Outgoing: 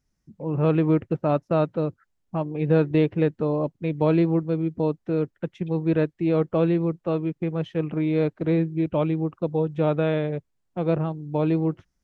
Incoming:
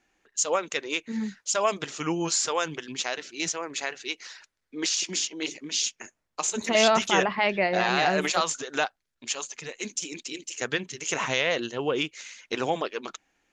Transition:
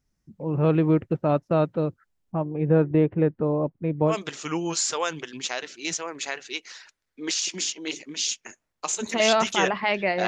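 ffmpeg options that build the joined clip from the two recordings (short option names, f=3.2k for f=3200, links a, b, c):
-filter_complex "[0:a]asettb=1/sr,asplit=3[a][b][c];[a]atrim=end=2.324[d];[b]atrim=start=2.32:end=4.16,asetpts=PTS-STARTPTS,afade=t=in:d=0.004:c=qsin,afade=t=out:st=1.836:d=0.004:c=qsin,lowpass=1.8k[e];[c]atrim=start=4.156[f];[d][e]acrossfade=d=0.004:c1=hsin:c2=qsin[g];[g][f]acrossfade=d=0.004:c1=qsin:c2=hsin,apad=whole_dur=10.27,atrim=end=10.27,atrim=end=4.16,asetpts=PTS-STARTPTS[h];[1:a]atrim=start=1.61:end=7.82,asetpts=PTS-STARTPTS[i];[h][i]acrossfade=d=0.1:c1=tri:c2=tri"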